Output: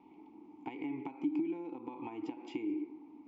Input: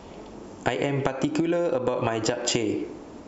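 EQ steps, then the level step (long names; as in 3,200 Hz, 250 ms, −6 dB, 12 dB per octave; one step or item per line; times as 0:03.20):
formant filter u
Bessel low-pass filter 5,100 Hz
−4.5 dB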